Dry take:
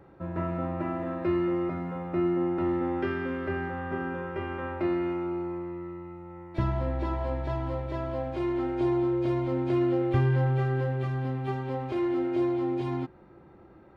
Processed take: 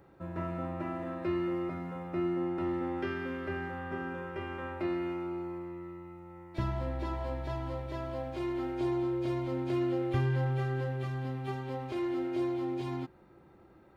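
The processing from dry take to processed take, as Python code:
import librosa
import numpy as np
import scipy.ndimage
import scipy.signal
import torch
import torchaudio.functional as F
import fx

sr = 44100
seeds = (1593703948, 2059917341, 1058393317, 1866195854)

y = fx.high_shelf(x, sr, hz=3900.0, db=11.5)
y = F.gain(torch.from_numpy(y), -5.5).numpy()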